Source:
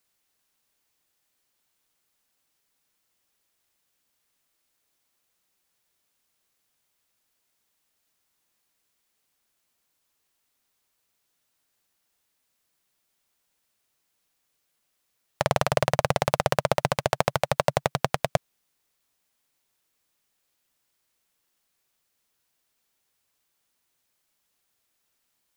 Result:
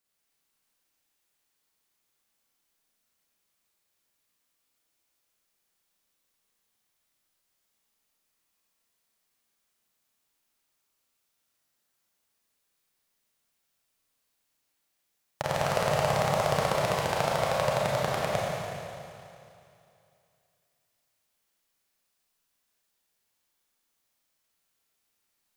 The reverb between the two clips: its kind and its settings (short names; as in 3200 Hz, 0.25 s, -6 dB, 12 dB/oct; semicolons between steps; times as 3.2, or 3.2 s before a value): Schroeder reverb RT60 2.6 s, combs from 28 ms, DRR -5 dB; gain -8 dB